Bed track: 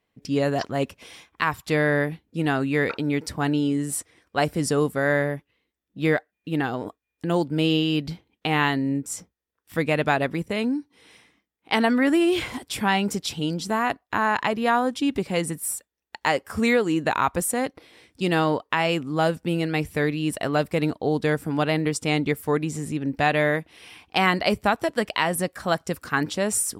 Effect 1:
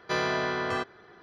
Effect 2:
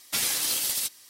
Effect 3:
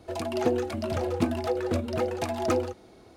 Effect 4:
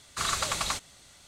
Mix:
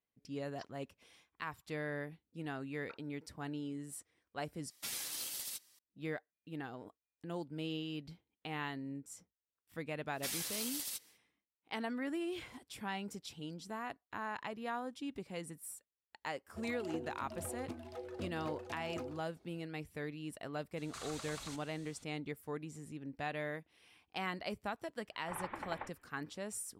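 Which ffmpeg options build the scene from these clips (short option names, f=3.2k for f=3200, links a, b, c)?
-filter_complex "[2:a]asplit=2[a][b];[4:a]asplit=2[c][d];[0:a]volume=-19dB[e];[3:a]alimiter=limit=-14.5dB:level=0:latency=1:release=444[f];[c]acompressor=threshold=-41dB:ratio=6:attack=11:release=46:knee=1:detection=peak[g];[d]highpass=f=210:t=q:w=0.5412,highpass=f=210:t=q:w=1.307,lowpass=f=2.5k:t=q:w=0.5176,lowpass=f=2.5k:t=q:w=0.7071,lowpass=f=2.5k:t=q:w=1.932,afreqshift=-290[h];[e]asplit=2[i][j];[i]atrim=end=4.704[k];[a]atrim=end=1.09,asetpts=PTS-STARTPTS,volume=-15dB[l];[j]atrim=start=5.786[m];[b]atrim=end=1.09,asetpts=PTS-STARTPTS,volume=-13.5dB,afade=t=in:d=0.1,afade=t=out:st=0.99:d=0.1,adelay=445410S[n];[f]atrim=end=3.16,asetpts=PTS-STARTPTS,volume=-17dB,afade=t=in:d=0.004:c=hsin,afade=t=out:st=3.156:d=0.004:c=hsin,adelay=16480[o];[g]atrim=end=1.27,asetpts=PTS-STARTPTS,volume=-7.5dB,afade=t=in:d=0.004:c=hsin,afade=t=out:st=1.266:d=0.004:c=hsin,adelay=20770[p];[h]atrim=end=1.27,asetpts=PTS-STARTPTS,volume=-11.5dB,afade=t=in:d=0.004:c=hsin,afade=t=out:st=1.266:d=0.004:c=hsin,adelay=25110[q];[k][l]acrossfade=d=0.004:c1=hsin:c2=hsin[r];[r][m]acrossfade=d=0.004:c1=hsin:c2=hsin[s];[s][n][o][p][q]amix=inputs=5:normalize=0"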